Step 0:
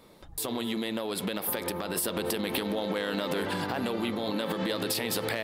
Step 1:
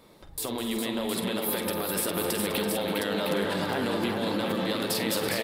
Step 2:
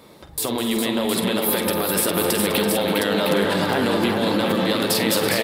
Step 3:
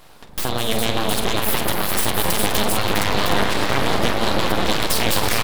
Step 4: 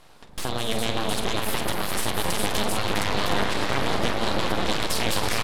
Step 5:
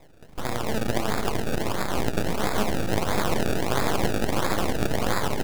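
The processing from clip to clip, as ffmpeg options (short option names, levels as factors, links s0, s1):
-af "aecho=1:1:48|204|266|333|408|713:0.316|0.237|0.178|0.266|0.562|0.501"
-af "highpass=59,volume=2.51"
-af "aeval=exprs='0.631*(cos(1*acos(clip(val(0)/0.631,-1,1)))-cos(1*PI/2))+0.0562*(cos(6*acos(clip(val(0)/0.631,-1,1)))-cos(6*PI/2))':c=same,aeval=exprs='abs(val(0))':c=same,volume=1.33"
-af "lowpass=11000,volume=0.562"
-af "acrusher=samples=29:mix=1:aa=0.000001:lfo=1:lforange=29:lforate=1.5"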